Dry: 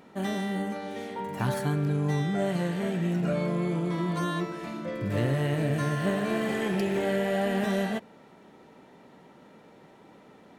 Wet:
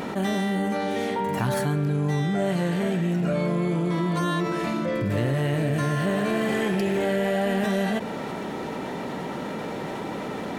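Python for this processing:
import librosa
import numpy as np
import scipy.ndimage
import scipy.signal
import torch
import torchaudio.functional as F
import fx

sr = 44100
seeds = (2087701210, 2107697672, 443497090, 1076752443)

y = fx.env_flatten(x, sr, amount_pct=70)
y = F.gain(torch.from_numpy(y), 1.0).numpy()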